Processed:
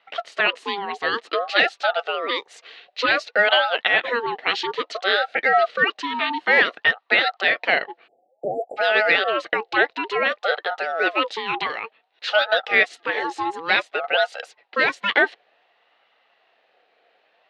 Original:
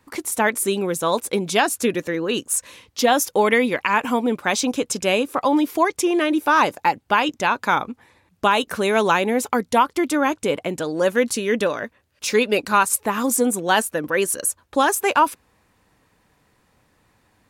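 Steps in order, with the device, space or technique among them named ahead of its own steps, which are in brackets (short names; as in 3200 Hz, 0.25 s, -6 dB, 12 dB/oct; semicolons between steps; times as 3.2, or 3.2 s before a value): voice changer toy (ring modulator with a swept carrier 830 Hz, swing 30%, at 0.56 Hz; speaker cabinet 450–4100 Hz, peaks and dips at 470 Hz +6 dB, 700 Hz +7 dB, 1000 Hz -6 dB, 1900 Hz +6 dB, 2800 Hz +6 dB, 4000 Hz +8 dB); 8.07–8.77 spectral delete 840–7200 Hz; 12.32–12.76 de-esser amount 55%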